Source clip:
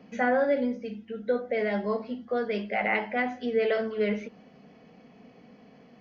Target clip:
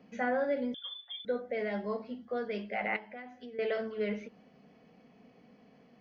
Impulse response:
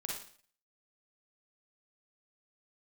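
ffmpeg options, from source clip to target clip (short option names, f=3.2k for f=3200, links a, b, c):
-filter_complex "[0:a]asettb=1/sr,asplit=3[a][b][c];[a]atrim=end=0.744[d];[b]atrim=start=0.74:end=1.25,asetpts=PTS-STARTPTS,afade=t=in:d=0.004:c=qsin,afade=t=out:st=0.506:d=0.004:c=qsin,lowpass=f=3.1k:t=q:w=0.5098,lowpass=f=3.1k:t=q:w=0.6013,lowpass=f=3.1k:t=q:w=0.9,lowpass=f=3.1k:t=q:w=2.563,afreqshift=-3700[e];[c]atrim=start=1.246[f];[d][e]acrossfade=d=0.004:c1=hsin:c2=qsin[g];[g][f]acrossfade=d=0.004:c1=qsin:c2=hsin,asettb=1/sr,asplit=3[h][i][j];[h]atrim=end=2.964[k];[i]atrim=start=2.96:end=3.59,asetpts=PTS-STARTPTS,afade=t=in:d=0.004:c=qsin,afade=t=out:st=0.626:d=0.004:c=qsin,acompressor=threshold=-38dB:ratio=5[l];[j]atrim=start=3.586[m];[k][l]acrossfade=d=0.004:c1=hsin:c2=qsin[n];[n][m]acrossfade=d=0.004:c1=qsin:c2=hsin,volume=-6.5dB"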